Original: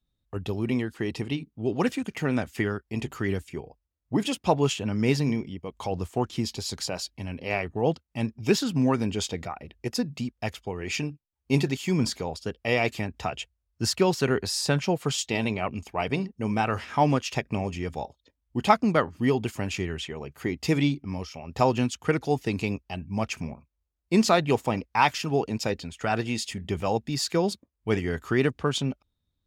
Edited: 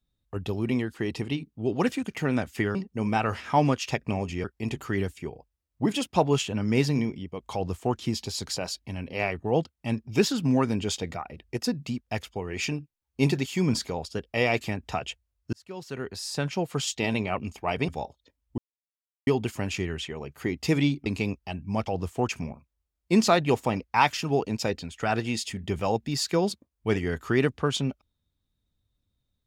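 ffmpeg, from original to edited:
ffmpeg -i in.wav -filter_complex "[0:a]asplit=10[link_01][link_02][link_03][link_04][link_05][link_06][link_07][link_08][link_09][link_10];[link_01]atrim=end=2.752[link_11];[link_02]atrim=start=16.188:end=17.882[link_12];[link_03]atrim=start=2.748:end=13.84,asetpts=PTS-STARTPTS,afade=type=out:start_time=11.088:duration=0.004:curve=hsin[link_13];[link_04]atrim=start=13.84:end=16.192,asetpts=PTS-STARTPTS,afade=type=in:duration=1.52[link_14];[link_05]atrim=start=17.878:end=18.58,asetpts=PTS-STARTPTS,afade=type=out:start_time=0.698:duration=0.004:curve=hsin[link_15];[link_06]atrim=start=18.58:end=19.27,asetpts=PTS-STARTPTS,volume=0[link_16];[link_07]atrim=start=19.27:end=21.062,asetpts=PTS-STARTPTS,afade=type=in:duration=0.004:curve=hsin[link_17];[link_08]atrim=start=22.488:end=23.302[link_18];[link_09]atrim=start=5.848:end=6.272[link_19];[link_10]atrim=start=23.298[link_20];[link_11][link_12]acrossfade=duration=0.004:curve1=hsin:curve2=hsin[link_21];[link_13][link_14]concat=n=2:v=0:a=1[link_22];[link_21][link_22]acrossfade=duration=0.004:curve1=hsin:curve2=hsin[link_23];[link_15][link_16][link_17]concat=n=3:v=0:a=1[link_24];[link_23][link_24]acrossfade=duration=0.004:curve1=hsin:curve2=hsin[link_25];[link_25][link_18]acrossfade=duration=0.004:curve1=hsin:curve2=hsin[link_26];[link_26][link_19]acrossfade=duration=0.004:curve1=hsin:curve2=hsin[link_27];[link_27][link_20]acrossfade=duration=0.004:curve1=hsin:curve2=hsin" out.wav

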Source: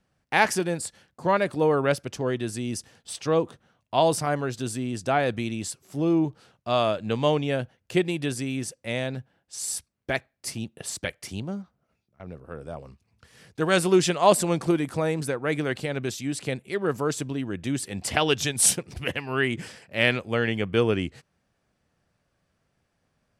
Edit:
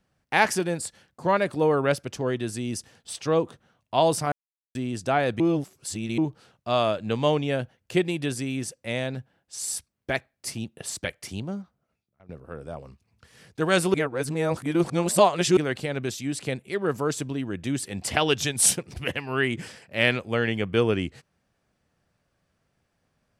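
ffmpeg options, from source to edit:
ffmpeg -i in.wav -filter_complex "[0:a]asplit=8[link_01][link_02][link_03][link_04][link_05][link_06][link_07][link_08];[link_01]atrim=end=4.32,asetpts=PTS-STARTPTS,afade=type=out:start_time=4.316:duration=0.004:curve=hsin[link_09];[link_02]atrim=start=4.32:end=4.75,asetpts=PTS-STARTPTS,volume=0[link_10];[link_03]atrim=start=4.75:end=5.402,asetpts=PTS-STARTPTS,afade=type=in:duration=0.004:curve=hsin[link_11];[link_04]atrim=start=5.398:end=6.182,asetpts=PTS-STARTPTS,areverse[link_12];[link_05]atrim=start=6.178:end=12.29,asetpts=PTS-STARTPTS,afade=type=out:start_time=5.402:duration=0.71:silence=0.149624[link_13];[link_06]atrim=start=12.29:end=13.942,asetpts=PTS-STARTPTS,afade=type=in:duration=0.004:curve=hsin:silence=0.149624[link_14];[link_07]atrim=start=13.938:end=15.572,asetpts=PTS-STARTPTS,areverse[link_15];[link_08]atrim=start=15.568[link_16];[link_09][link_10][link_11]concat=n=3:v=0:a=1[link_17];[link_17][link_12]acrossfade=duration=0.004:curve1=hsin:curve2=hsin[link_18];[link_13][link_14]concat=n=2:v=0:a=1[link_19];[link_18][link_19]acrossfade=duration=0.004:curve1=hsin:curve2=hsin[link_20];[link_20][link_15]acrossfade=duration=0.004:curve1=hsin:curve2=hsin[link_21];[link_21][link_16]acrossfade=duration=0.004:curve1=hsin:curve2=hsin" out.wav

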